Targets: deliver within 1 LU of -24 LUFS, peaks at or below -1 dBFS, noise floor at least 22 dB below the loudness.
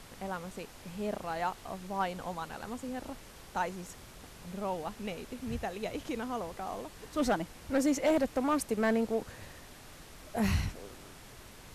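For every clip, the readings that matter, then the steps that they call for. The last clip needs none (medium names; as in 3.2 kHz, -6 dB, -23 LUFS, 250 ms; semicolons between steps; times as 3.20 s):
clipped samples 0.5%; clipping level -21.5 dBFS; noise floor -52 dBFS; noise floor target -57 dBFS; loudness -34.5 LUFS; peak level -21.5 dBFS; loudness target -24.0 LUFS
-> clip repair -21.5 dBFS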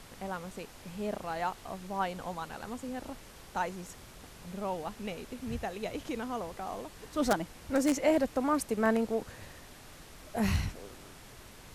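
clipped samples 0.0%; noise floor -52 dBFS; noise floor target -56 dBFS
-> noise print and reduce 6 dB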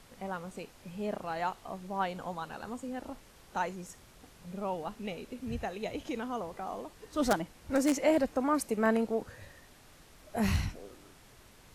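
noise floor -58 dBFS; loudness -34.0 LUFS; peak level -12.5 dBFS; loudness target -24.0 LUFS
-> trim +10 dB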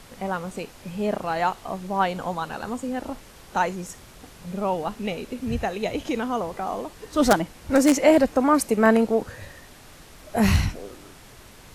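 loudness -24.0 LUFS; peak level -2.5 dBFS; noise floor -48 dBFS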